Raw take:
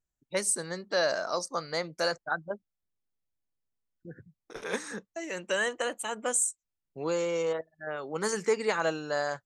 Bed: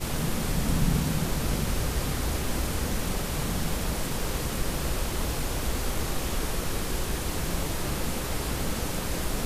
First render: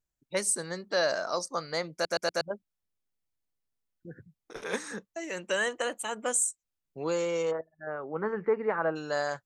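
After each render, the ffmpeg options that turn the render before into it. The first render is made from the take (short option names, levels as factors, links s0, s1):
-filter_complex "[0:a]asplit=3[s0][s1][s2];[s0]afade=t=out:st=7.5:d=0.02[s3];[s1]lowpass=f=1700:w=0.5412,lowpass=f=1700:w=1.3066,afade=t=in:st=7.5:d=0.02,afade=t=out:st=8.95:d=0.02[s4];[s2]afade=t=in:st=8.95:d=0.02[s5];[s3][s4][s5]amix=inputs=3:normalize=0,asplit=5[s6][s7][s8][s9][s10];[s6]atrim=end=2.052[s11];[s7]atrim=start=1.928:end=2.052[s12];[s8]atrim=start=1.928:end=2.052[s13];[s9]atrim=start=1.928:end=2.052[s14];[s10]atrim=start=2.408[s15];[s11][s12]acrossfade=d=0.004:c1=hsin:c2=hsin[s16];[s16][s13]acrossfade=d=0.004:c1=hsin:c2=hsin[s17];[s17][s14]acrossfade=d=0.004:c1=hsin:c2=hsin[s18];[s18][s15]acrossfade=d=0.004:c1=hsin:c2=hsin"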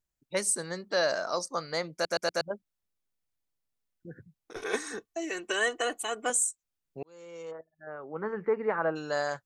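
-filter_complex "[0:a]asettb=1/sr,asplit=3[s0][s1][s2];[s0]atrim=end=4.564[s3];[s1]atrim=start=4.56:end=6.3,asetpts=PTS-STARTPTS,afade=t=in:d=0.004:c=qsin,afade=t=out:st=1.736:d=0.004:c=qsin,aecho=1:1:2.7:0.77,atrim=end_sample=76734[s4];[s2]atrim=start=6.296[s5];[s3][s4]acrossfade=d=0.004:c1=hsin:c2=qsin[s6];[s6][s5]acrossfade=d=0.004:c1=qsin:c2=hsin,asplit=2[s7][s8];[s7]atrim=end=7.03,asetpts=PTS-STARTPTS,afade=t=out:st=7.026:d=0.004:c=hsin[s9];[s8]atrim=start=7.03,asetpts=PTS-STARTPTS,afade=t=in:d=1.65[s10];[s9][s10]concat=n=2:v=0:a=1"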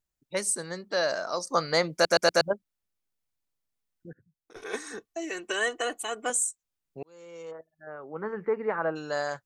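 -filter_complex "[0:a]asplit=4[s0][s1][s2][s3];[s0]atrim=end=1.472[s4];[s1]atrim=start=1.468:end=2.532,asetpts=PTS-STARTPTS,volume=2.37[s5];[s2]atrim=start=2.528:end=4.13,asetpts=PTS-STARTPTS,afade=t=out:st=1.598:d=0.004:c=hsin:silence=0.141254[s6];[s3]atrim=start=4.13,asetpts=PTS-STARTPTS,afade=t=in:d=0.96:silence=0.141254[s7];[s4][s5]acrossfade=d=0.004:c1=hsin:c2=hsin[s8];[s6][s7]concat=n=2:v=0:a=1[s9];[s8][s9]acrossfade=d=0.004:c1=hsin:c2=hsin"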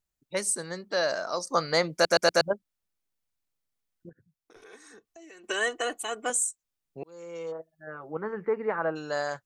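-filter_complex "[0:a]asettb=1/sr,asplit=3[s0][s1][s2];[s0]atrim=end=4.094[s3];[s1]atrim=start=4.09:end=5.44,asetpts=PTS-STARTPTS,afade=t=in:d=0.004:c=qsin,afade=t=out:st=1.346:d=0.004:c=qsin,acompressor=threshold=0.00251:ratio=3:attack=3.2:release=140:knee=1:detection=peak[s4];[s2]atrim=start=5.436[s5];[s3][s4]acrossfade=d=0.004:c1=hsin:c2=qsin[s6];[s6][s5]acrossfade=d=0.004:c1=qsin:c2=hsin,asettb=1/sr,asplit=3[s7][s8][s9];[s7]atrim=end=7.024[s10];[s8]atrim=start=7.02:end=8.17,asetpts=PTS-STARTPTS,afade=t=in:d=0.004:c=qsin,afade=t=out:st=1.146:d=0.004:c=qsin,aecho=1:1:6:0.9,atrim=end_sample=50715[s11];[s9]atrim=start=8.166[s12];[s10][s11]acrossfade=d=0.004:c1=hsin:c2=qsin[s13];[s13][s12]acrossfade=d=0.004:c1=qsin:c2=hsin"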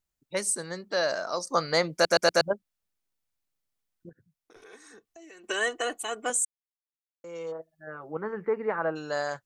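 -filter_complex "[0:a]asplit=3[s0][s1][s2];[s0]atrim=end=6.45,asetpts=PTS-STARTPTS,afade=t=out:st=6.446:d=0.004:c=hsin[s3];[s1]atrim=start=6.45:end=7.24,asetpts=PTS-STARTPTS,volume=0[s4];[s2]atrim=start=7.24,asetpts=PTS-STARTPTS,afade=t=in:d=0.004:c=hsin[s5];[s3][s4][s5]concat=n=3:v=0:a=1"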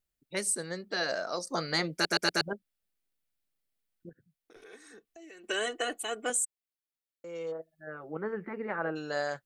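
-af "afftfilt=real='re*lt(hypot(re,im),0.355)':imag='im*lt(hypot(re,im),0.355)':win_size=1024:overlap=0.75,equalizer=f=100:t=o:w=0.67:g=-6,equalizer=f=1000:t=o:w=0.67:g=-7,equalizer=f=6300:t=o:w=0.67:g=-5"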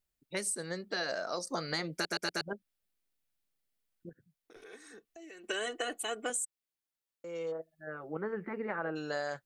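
-af "acompressor=threshold=0.0282:ratio=6"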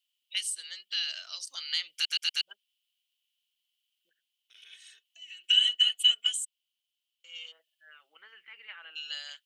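-af "highpass=f=3000:t=q:w=13"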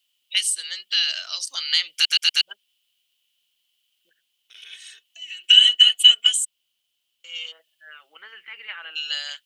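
-af "volume=3.35"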